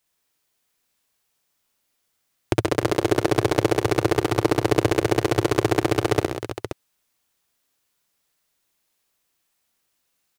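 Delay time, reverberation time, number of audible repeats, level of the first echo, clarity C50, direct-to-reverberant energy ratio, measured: 60 ms, no reverb, 4, -3.0 dB, no reverb, no reverb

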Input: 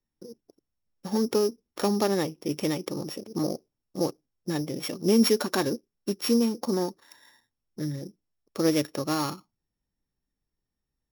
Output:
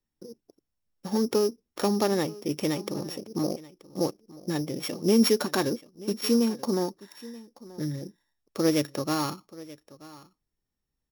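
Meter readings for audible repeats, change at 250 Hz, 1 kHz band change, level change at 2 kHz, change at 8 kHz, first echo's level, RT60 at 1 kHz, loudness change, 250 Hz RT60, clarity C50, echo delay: 1, 0.0 dB, 0.0 dB, 0.0 dB, 0.0 dB, -19.5 dB, no reverb, 0.0 dB, no reverb, no reverb, 931 ms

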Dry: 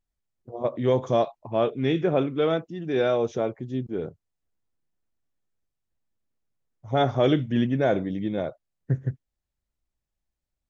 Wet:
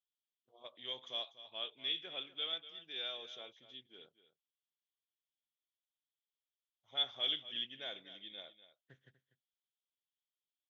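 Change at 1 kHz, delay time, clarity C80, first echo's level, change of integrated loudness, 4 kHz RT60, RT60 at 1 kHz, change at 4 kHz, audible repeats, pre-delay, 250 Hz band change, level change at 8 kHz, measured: -24.5 dB, 244 ms, no reverb, -14.5 dB, -14.0 dB, no reverb, no reverb, +3.0 dB, 1, no reverb, -35.0 dB, no reading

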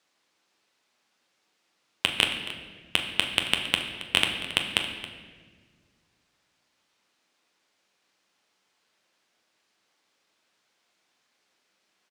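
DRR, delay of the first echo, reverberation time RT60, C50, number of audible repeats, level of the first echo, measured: 2.5 dB, 273 ms, 1.5 s, 6.5 dB, 1, -15.5 dB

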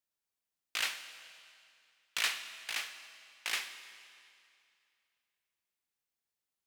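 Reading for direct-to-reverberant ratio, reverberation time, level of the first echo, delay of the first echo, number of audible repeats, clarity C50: 9.5 dB, 2.4 s, no echo, no echo, no echo, 10.5 dB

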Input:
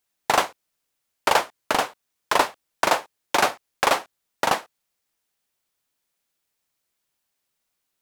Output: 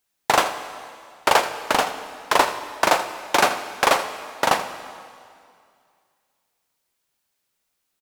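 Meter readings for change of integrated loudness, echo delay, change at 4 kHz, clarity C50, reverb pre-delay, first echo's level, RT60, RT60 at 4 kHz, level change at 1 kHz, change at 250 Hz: +2.5 dB, 82 ms, +2.5 dB, 9.0 dB, 7 ms, -13.5 dB, 2.3 s, 2.1 s, +2.5 dB, +2.5 dB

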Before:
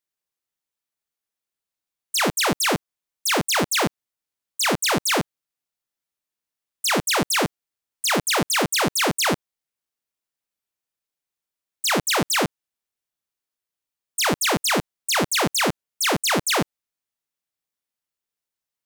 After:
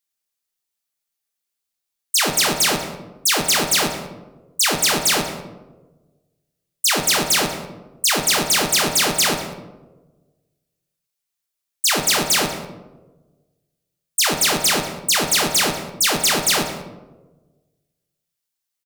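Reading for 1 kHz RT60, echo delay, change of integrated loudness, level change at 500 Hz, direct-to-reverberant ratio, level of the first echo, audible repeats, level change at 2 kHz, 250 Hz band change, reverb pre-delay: 1.0 s, 189 ms, +4.0 dB, +0.5 dB, 3.5 dB, -18.0 dB, 1, +2.0 dB, -1.0 dB, 3 ms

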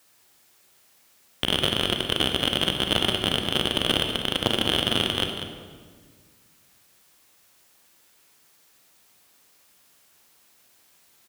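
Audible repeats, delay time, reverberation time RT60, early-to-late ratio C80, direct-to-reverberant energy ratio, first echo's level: 1, 194 ms, 1.7 s, 5.5 dB, 3.5 dB, -10.5 dB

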